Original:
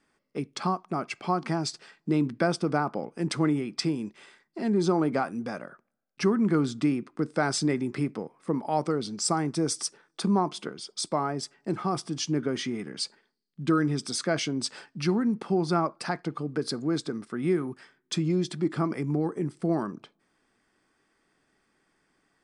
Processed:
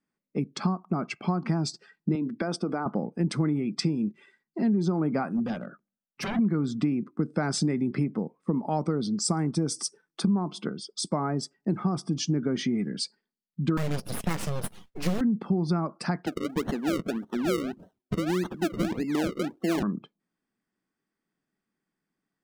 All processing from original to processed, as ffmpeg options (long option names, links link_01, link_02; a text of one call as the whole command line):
ffmpeg -i in.wav -filter_complex "[0:a]asettb=1/sr,asplit=3[link_01][link_02][link_03];[link_01]atrim=end=2.154[link_04];[link_02]atrim=start=2.15:end=2.86,asetpts=PTS-STARTPTS,afade=type=in:duration=0.004:curve=qsin,afade=type=out:start_time=0.706:duration=0.004:curve=qsin,highpass=270,acompressor=threshold=-26dB:ratio=5:attack=3.2:release=140:knee=1:detection=peak[link_05];[link_03]atrim=start=2.856[link_06];[link_04][link_05]acrossfade=duration=0.004:curve1=hsin:curve2=qsin[link_07];[link_07][link_06]acrossfade=duration=0.004:curve1=qsin:curve2=hsin,asettb=1/sr,asplit=3[link_08][link_09][link_10];[link_08]atrim=end=5.274[link_11];[link_09]atrim=start=5.27:end=6.39,asetpts=PTS-STARTPTS,afade=type=in:duration=0.004:curve=qsin,afade=type=out:start_time=1.116:duration=0.004:curve=qsin,aeval=exprs='0.0398*(abs(mod(val(0)/0.0398+3,4)-2)-1)':channel_layout=same,bandreject=frequency=50:width_type=h:width=6,bandreject=frequency=100:width_type=h:width=6,bandreject=frequency=150:width_type=h:width=6,bandreject=frequency=200:width_type=h:width=6,bandreject=frequency=250:width_type=h:width=6,bandreject=frequency=300:width_type=h:width=6,bandreject=frequency=350:width_type=h:width=6[link_12];[link_10]atrim=start=6.386[link_13];[link_11][link_12]acrossfade=duration=0.004:curve1=hsin:curve2=qsin[link_14];[link_14][link_13]acrossfade=duration=0.004:curve1=qsin:curve2=hsin,asettb=1/sr,asplit=3[link_15][link_16][link_17];[link_15]atrim=end=13.774[link_18];[link_16]atrim=start=13.77:end=15.21,asetpts=PTS-STARTPTS,afade=type=in:duration=0.004:curve=qsin,afade=type=out:start_time=1.436:duration=0.004:curve=qsin,lowpass=frequency=6700:width=0.5412,lowpass=frequency=6700:width=1.3066,aeval=exprs='abs(val(0))':channel_layout=same,acrusher=bits=2:mode=log:mix=0:aa=0.000001[link_19];[link_17]atrim=start=15.206[link_20];[link_18][link_19]acrossfade=duration=0.004:curve1=hsin:curve2=qsin[link_21];[link_21][link_20]acrossfade=duration=0.004:curve1=qsin:curve2=hsin,asettb=1/sr,asplit=3[link_22][link_23][link_24];[link_22]atrim=end=16.264[link_25];[link_23]atrim=start=16.26:end=19.83,asetpts=PTS-STARTPTS,afade=type=in:duration=0.004:curve=qsin,afade=type=out:start_time=3.566:duration=0.004:curve=qsin,highpass=frequency=250:width=0.5412,highpass=frequency=250:width=1.3066,acrusher=samples=36:mix=1:aa=0.000001:lfo=1:lforange=36:lforate=1.7[link_26];[link_24]atrim=start=19.826[link_27];[link_25][link_26]acrossfade=duration=0.004:curve1=hsin:curve2=qsin[link_28];[link_28][link_27]acrossfade=duration=0.004:curve1=qsin:curve2=hsin,afftdn=noise_reduction=17:noise_floor=-48,equalizer=frequency=190:width=1.3:gain=11,acompressor=threshold=-22dB:ratio=6" out.wav